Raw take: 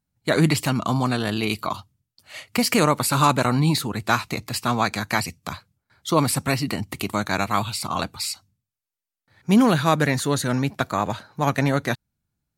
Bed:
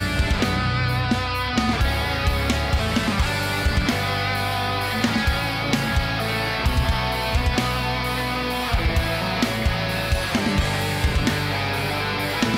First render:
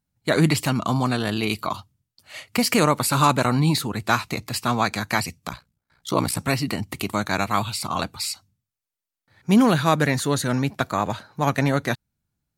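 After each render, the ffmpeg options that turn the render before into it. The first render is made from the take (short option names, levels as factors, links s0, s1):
-filter_complex "[0:a]asettb=1/sr,asplit=3[s0][s1][s2];[s0]atrim=end=5.484[s3];[s1]atrim=start=5.48:end=6.39,asetpts=PTS-STARTPTS,afade=t=in:d=0.004:c=qsin,afade=t=out:st=0.906:d=0.004:c=qsin,aeval=exprs='val(0)*sin(2*PI*30*n/s)':c=same[s4];[s2]atrim=start=6.386[s5];[s3][s4]acrossfade=d=0.004:c1=hsin:c2=qsin[s6];[s6][s5]acrossfade=d=0.004:c1=qsin:c2=hsin"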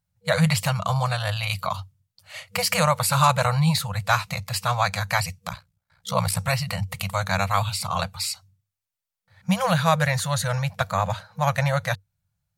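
-af "afftfilt=real='re*(1-between(b*sr/4096,200,480))':imag='im*(1-between(b*sr/4096,200,480))':win_size=4096:overlap=0.75,equalizer=f=96:w=4.9:g=9.5"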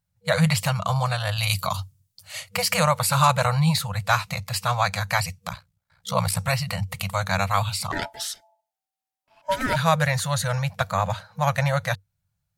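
-filter_complex "[0:a]asettb=1/sr,asplit=3[s0][s1][s2];[s0]atrim=end=1.384[s3];[s1]atrim=start=1.38:end=2.49,asetpts=PTS-STARTPTS,afade=t=in:d=0.004:c=qsin,afade=t=out:st=1.106:d=0.004:c=qsin,bass=f=250:g=4,treble=f=4000:g=10[s4];[s2]atrim=start=2.486[s5];[s3][s4]acrossfade=d=0.004:c1=hsin:c2=qsin[s6];[s6][s5]acrossfade=d=0.004:c1=qsin:c2=hsin,asplit=3[s7][s8][s9];[s7]afade=t=out:st=7.91:d=0.02[s10];[s8]aeval=exprs='val(0)*sin(2*PI*770*n/s)':c=same,afade=t=in:st=7.91:d=0.02,afade=t=out:st=9.75:d=0.02[s11];[s9]afade=t=in:st=9.75:d=0.02[s12];[s10][s11][s12]amix=inputs=3:normalize=0"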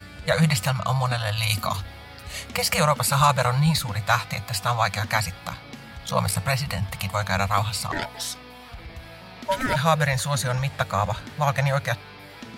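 -filter_complex "[1:a]volume=0.112[s0];[0:a][s0]amix=inputs=2:normalize=0"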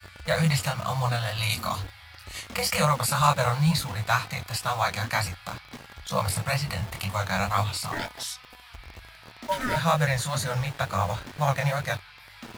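-filter_complex "[0:a]flanger=delay=20:depth=6.9:speed=2.1,acrossover=split=100|900|2200[s0][s1][s2][s3];[s1]acrusher=bits=6:mix=0:aa=0.000001[s4];[s0][s4][s2][s3]amix=inputs=4:normalize=0"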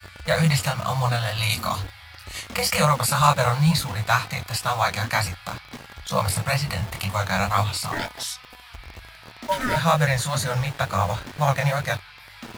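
-af "volume=1.5"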